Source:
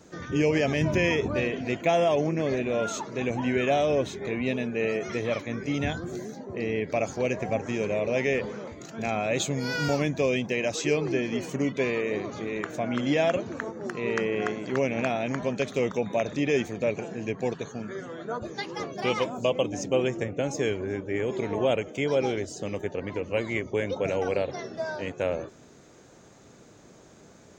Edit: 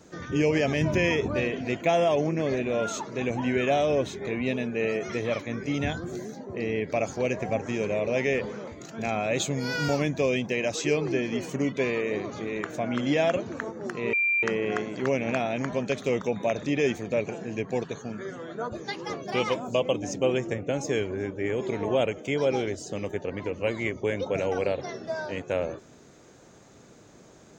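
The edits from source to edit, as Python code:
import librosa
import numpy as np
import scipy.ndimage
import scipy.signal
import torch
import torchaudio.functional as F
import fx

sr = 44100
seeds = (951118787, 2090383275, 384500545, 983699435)

y = fx.edit(x, sr, fx.insert_tone(at_s=14.13, length_s=0.3, hz=2370.0, db=-21.0), tone=tone)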